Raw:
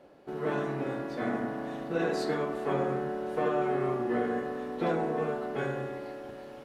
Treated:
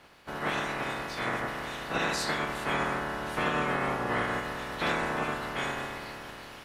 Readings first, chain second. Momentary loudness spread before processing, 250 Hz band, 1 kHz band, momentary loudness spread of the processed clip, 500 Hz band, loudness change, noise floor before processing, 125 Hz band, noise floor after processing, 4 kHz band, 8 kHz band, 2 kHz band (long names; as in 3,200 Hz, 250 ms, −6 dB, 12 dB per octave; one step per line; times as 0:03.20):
7 LU, −4.0 dB, +3.5 dB, 7 LU, −5.0 dB, +0.5 dB, −46 dBFS, −0.5 dB, −46 dBFS, +12.0 dB, can't be measured, +8.5 dB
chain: ceiling on every frequency bin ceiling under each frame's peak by 25 dB